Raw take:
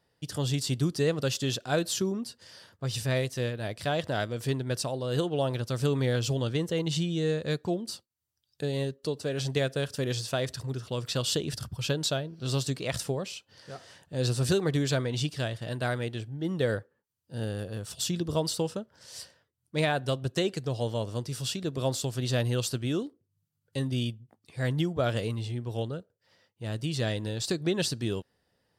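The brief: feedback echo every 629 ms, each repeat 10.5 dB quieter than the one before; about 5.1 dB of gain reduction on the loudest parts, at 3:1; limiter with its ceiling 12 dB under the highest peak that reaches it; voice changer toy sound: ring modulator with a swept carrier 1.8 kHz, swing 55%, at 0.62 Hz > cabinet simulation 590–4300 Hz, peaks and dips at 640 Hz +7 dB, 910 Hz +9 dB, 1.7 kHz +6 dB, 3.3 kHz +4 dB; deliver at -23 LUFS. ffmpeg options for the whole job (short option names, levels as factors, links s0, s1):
-af "acompressor=threshold=0.0355:ratio=3,alimiter=level_in=1.88:limit=0.0631:level=0:latency=1,volume=0.531,aecho=1:1:629|1258|1887:0.299|0.0896|0.0269,aeval=exprs='val(0)*sin(2*PI*1800*n/s+1800*0.55/0.62*sin(2*PI*0.62*n/s))':c=same,highpass=590,equalizer=f=640:t=q:w=4:g=7,equalizer=f=910:t=q:w=4:g=9,equalizer=f=1700:t=q:w=4:g=6,equalizer=f=3300:t=q:w=4:g=4,lowpass=f=4300:w=0.5412,lowpass=f=4300:w=1.3066,volume=4.73"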